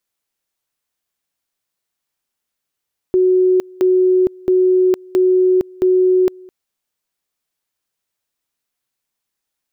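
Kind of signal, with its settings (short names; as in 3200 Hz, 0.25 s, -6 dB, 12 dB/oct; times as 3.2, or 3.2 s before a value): two-level tone 369 Hz -9.5 dBFS, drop 26 dB, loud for 0.46 s, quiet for 0.21 s, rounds 5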